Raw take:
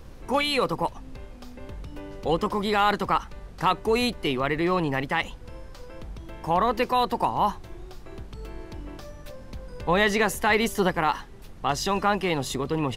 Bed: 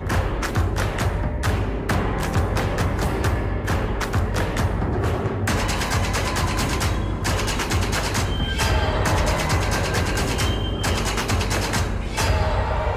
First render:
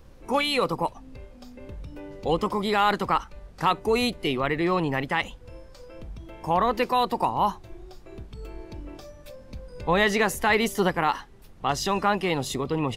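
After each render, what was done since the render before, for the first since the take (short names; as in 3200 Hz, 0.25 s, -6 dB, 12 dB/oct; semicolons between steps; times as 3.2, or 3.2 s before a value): noise print and reduce 6 dB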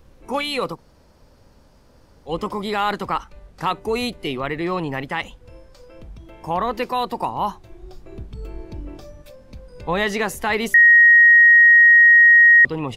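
0.75–2.3 room tone, crossfade 0.10 s; 7.83–9.22 low shelf 440 Hz +6.5 dB; 10.74–12.65 bleep 1880 Hz -7 dBFS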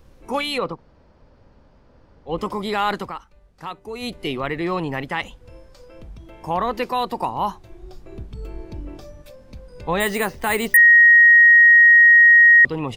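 0.58–2.38 Bessel low-pass 2600 Hz; 2.99–4.13 dip -10 dB, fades 0.14 s; 10–10.77 careless resampling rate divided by 4×, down filtered, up hold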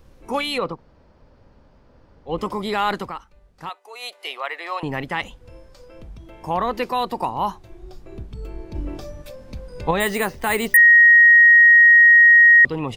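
3.69–4.83 HPF 610 Hz 24 dB/oct; 8.75–9.91 gain +5 dB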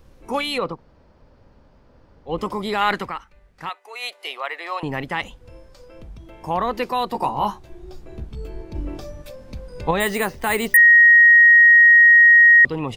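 2.81–4.13 bell 2000 Hz +8 dB 1 oct; 7.13–8.62 doubler 14 ms -3.5 dB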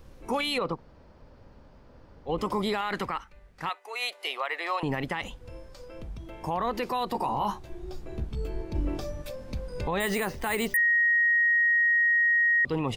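compressor 2:1, threshold -15 dBFS, peak gain reduction 3.5 dB; limiter -19.5 dBFS, peak gain reduction 12.5 dB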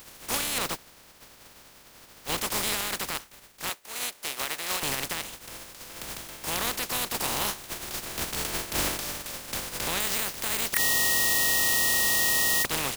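spectral contrast lowered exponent 0.2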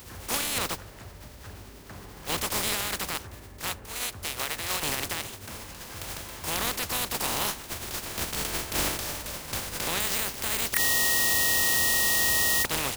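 add bed -23 dB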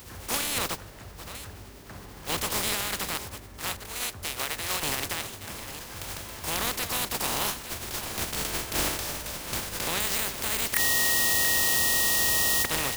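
reverse delay 0.483 s, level -12 dB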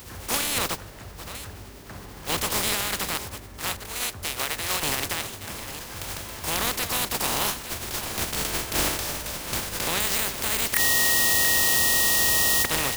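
gain +3 dB; limiter -3 dBFS, peak gain reduction 1 dB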